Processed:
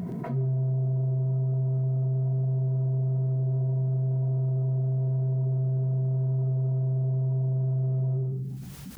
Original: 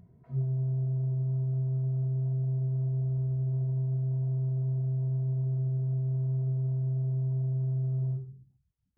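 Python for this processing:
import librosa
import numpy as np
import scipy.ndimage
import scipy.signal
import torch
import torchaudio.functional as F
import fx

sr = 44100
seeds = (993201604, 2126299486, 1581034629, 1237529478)

p1 = fx.low_shelf_res(x, sr, hz=130.0, db=-13.5, q=1.5)
p2 = p1 + fx.echo_single(p1, sr, ms=121, db=-9.0, dry=0)
p3 = fx.env_flatten(p2, sr, amount_pct=70)
y = p3 * librosa.db_to_amplitude(7.5)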